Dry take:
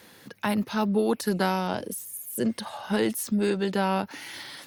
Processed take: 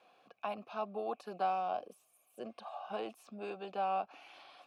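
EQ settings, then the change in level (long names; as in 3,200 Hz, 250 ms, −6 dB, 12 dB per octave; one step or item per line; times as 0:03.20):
formant filter a
+1.0 dB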